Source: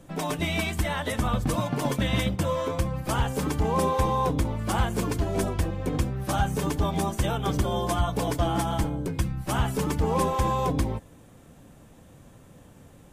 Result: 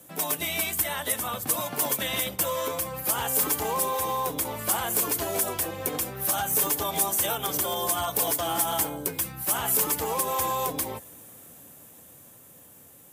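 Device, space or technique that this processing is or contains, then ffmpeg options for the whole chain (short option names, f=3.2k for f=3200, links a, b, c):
FM broadcast chain: -filter_complex "[0:a]highpass=f=71:w=0.5412,highpass=f=71:w=1.3066,bass=f=250:g=-7,treble=f=4k:g=-7,dynaudnorm=f=730:g=7:m=6.5dB,acrossover=split=370|940[a][b][c];[a]acompressor=threshold=-36dB:ratio=4[d];[b]acompressor=threshold=-26dB:ratio=4[e];[c]acompressor=threshold=-28dB:ratio=4[f];[d][e][f]amix=inputs=3:normalize=0,aemphasis=mode=production:type=50fm,alimiter=limit=-17dB:level=0:latency=1:release=91,asoftclip=type=hard:threshold=-19.5dB,lowpass=f=15k:w=0.5412,lowpass=f=15k:w=1.3066,aemphasis=mode=production:type=50fm,volume=-2.5dB"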